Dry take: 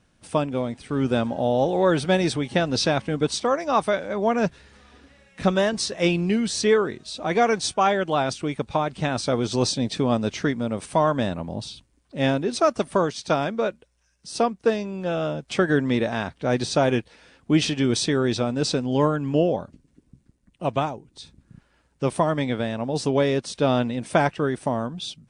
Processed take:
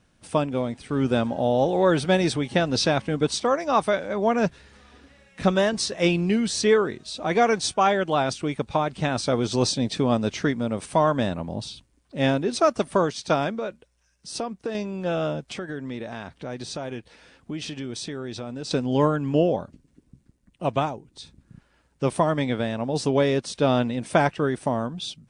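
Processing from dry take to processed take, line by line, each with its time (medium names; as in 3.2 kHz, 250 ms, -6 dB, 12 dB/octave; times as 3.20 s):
13.55–14.75 s: compression, threshold -25 dBFS
15.47–18.71 s: compression 3:1, threshold -33 dBFS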